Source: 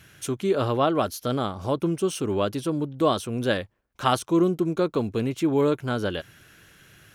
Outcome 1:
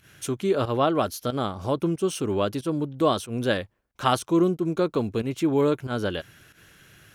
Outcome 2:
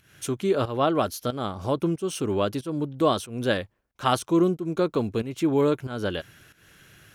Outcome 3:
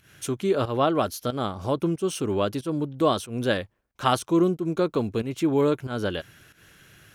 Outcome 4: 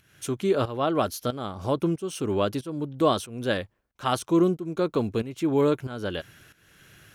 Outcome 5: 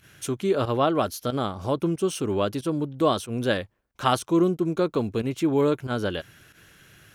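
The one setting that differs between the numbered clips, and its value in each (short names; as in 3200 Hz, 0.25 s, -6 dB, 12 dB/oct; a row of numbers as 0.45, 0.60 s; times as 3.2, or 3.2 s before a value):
pump, release: 107, 274, 170, 498, 73 ms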